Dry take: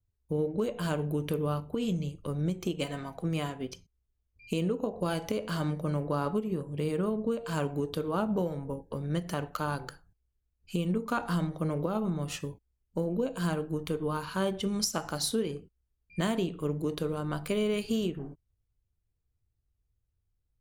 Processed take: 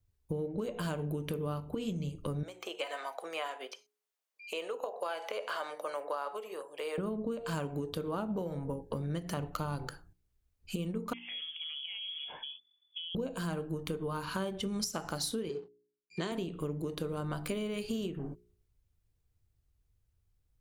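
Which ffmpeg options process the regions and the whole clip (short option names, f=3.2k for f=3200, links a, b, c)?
-filter_complex "[0:a]asettb=1/sr,asplit=3[a][b][c];[a]atrim=end=2.434[d];[b]atrim=start=2.43:end=6.98,asetpts=PTS-STARTPTS,afade=t=in:d=0.004:c=qsin,afade=t=out:st=4.546:d=0.004:c=qsin,highpass=f=550:w=0.5412,highpass=f=550:w=1.3066,acrossover=split=3300[e][f];[f]acompressor=threshold=-54dB:ratio=4:attack=1:release=60[g];[e][g]amix=inputs=2:normalize=0[h];[c]atrim=start=6.976[i];[d][h]acrossfade=d=0.004:c1=hsin:c2=qsin[j];[j][i]acrossfade=d=0.004:c1=qsin:c2=hsin,asettb=1/sr,asplit=3[k][l][m];[k]atrim=end=9.374[n];[l]atrim=start=9.37:end=9.87,asetpts=PTS-STARTPTS,afade=t=in:d=0.004:c=qsin,afade=t=out:st=0.496:d=0.004:c=qsin,lowshelf=f=170:g=9,bandreject=f=1.6k:w=6.4[o];[m]atrim=start=9.866[p];[n][o]acrossfade=d=0.004:c1=hsin:c2=qsin[q];[q][p]acrossfade=d=0.004:c1=qsin:c2=hsin,asettb=1/sr,asplit=3[r][s][t];[r]atrim=end=11.134[u];[s]atrim=start=11.13:end=13.15,asetpts=PTS-STARTPTS,afade=t=in:d=0.004:c=qsin,afade=t=out:st=2.016:d=0.004:c=qsin,acompressor=threshold=-44dB:ratio=6:attack=3.2:release=140:knee=1:detection=peak,lowpass=f=3k:t=q:w=0.5098,lowpass=f=3k:t=q:w=0.6013,lowpass=f=3k:t=q:w=0.9,lowpass=f=3k:t=q:w=2.563,afreqshift=-3500[v];[t]atrim=start=13.146[w];[u][v]acrossfade=d=0.004:c1=hsin:c2=qsin[x];[x][w]acrossfade=d=0.004:c1=qsin:c2=hsin,asettb=1/sr,asplit=3[y][z][aa];[y]atrim=end=15.494[ab];[z]atrim=start=15.49:end=16.32,asetpts=PTS-STARTPTS,afade=t=in:d=0.004:c=qsin,afade=t=out:st=0.826:d=0.004:c=qsin,aeval=exprs='sgn(val(0))*max(abs(val(0))-0.00133,0)':c=same,highpass=200,equalizer=f=240:t=q:w=4:g=-7,equalizer=f=410:t=q:w=4:g=10,equalizer=f=590:t=q:w=4:g=-5,equalizer=f=4.2k:t=q:w=4:g=8,lowpass=f=7.6k:w=0.5412,lowpass=f=7.6k:w=1.3066[ac];[aa]atrim=start=16.316[ad];[ab][ac]acrossfade=d=0.004:c1=hsin:c2=qsin[ae];[ae][ad]acrossfade=d=0.004:c1=qsin:c2=hsin,acompressor=threshold=-37dB:ratio=6,bandreject=f=59.95:t=h:w=4,bandreject=f=119.9:t=h:w=4,bandreject=f=179.85:t=h:w=4,bandreject=f=239.8:t=h:w=4,bandreject=f=299.75:t=h:w=4,bandreject=f=359.7:t=h:w=4,bandreject=f=419.65:t=h:w=4,volume=4.5dB"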